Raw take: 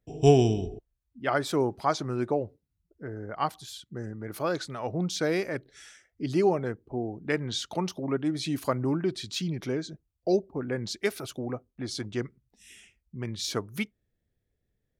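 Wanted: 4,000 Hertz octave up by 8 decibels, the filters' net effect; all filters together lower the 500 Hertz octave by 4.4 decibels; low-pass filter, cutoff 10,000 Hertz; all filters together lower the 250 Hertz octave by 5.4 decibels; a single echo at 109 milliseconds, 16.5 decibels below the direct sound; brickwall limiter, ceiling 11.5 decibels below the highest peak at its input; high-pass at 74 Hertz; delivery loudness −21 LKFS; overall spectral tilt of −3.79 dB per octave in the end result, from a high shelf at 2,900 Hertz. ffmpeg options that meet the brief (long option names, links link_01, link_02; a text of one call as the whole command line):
ffmpeg -i in.wav -af "highpass=74,lowpass=10000,equalizer=frequency=250:width_type=o:gain=-6.5,equalizer=frequency=500:width_type=o:gain=-3.5,highshelf=frequency=2900:gain=6,equalizer=frequency=4000:width_type=o:gain=5,alimiter=limit=-21dB:level=0:latency=1,aecho=1:1:109:0.15,volume=12.5dB" out.wav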